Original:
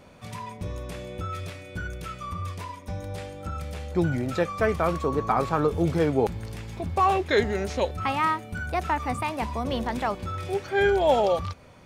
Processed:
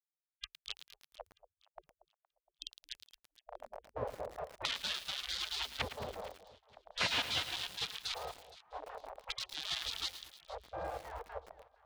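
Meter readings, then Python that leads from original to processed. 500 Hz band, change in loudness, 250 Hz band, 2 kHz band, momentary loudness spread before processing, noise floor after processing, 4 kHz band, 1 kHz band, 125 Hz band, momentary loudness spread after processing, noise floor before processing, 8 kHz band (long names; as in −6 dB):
−21.5 dB, −12.5 dB, −28.0 dB, −11.5 dB, 14 LU, below −85 dBFS, +2.0 dB, −19.0 dB, −24.5 dB, 16 LU, −44 dBFS, −3.0 dB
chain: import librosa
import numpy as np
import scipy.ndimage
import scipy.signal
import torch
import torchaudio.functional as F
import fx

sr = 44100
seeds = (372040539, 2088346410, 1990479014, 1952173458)

y = fx.echo_feedback(x, sr, ms=773, feedback_pct=20, wet_db=-17)
y = fx.dynamic_eq(y, sr, hz=140.0, q=5.6, threshold_db=-47.0, ratio=4.0, max_db=-4)
y = fx.step_gate(y, sr, bpm=186, pattern='xxxx.xx.xxx', floor_db=-60.0, edge_ms=4.5)
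y = fx.ripple_eq(y, sr, per_octave=1.3, db=14)
y = fx.schmitt(y, sr, flips_db=-23.0)
y = scipy.signal.sosfilt(scipy.signal.butter(4, 110.0, 'highpass', fs=sr, output='sos'), y)
y = fx.hum_notches(y, sr, base_hz=60, count=6)
y = fx.filter_lfo_lowpass(y, sr, shape='square', hz=0.43, low_hz=270.0, high_hz=2500.0, q=1.9)
y = fx.rider(y, sr, range_db=4, speed_s=2.0)
y = fx.spec_gate(y, sr, threshold_db=-25, keep='weak')
y = fx.echo_alternate(y, sr, ms=233, hz=900.0, feedback_pct=57, wet_db=-14)
y = fx.echo_crushed(y, sr, ms=110, feedback_pct=80, bits=9, wet_db=-10.0)
y = y * librosa.db_to_amplitude(12.0)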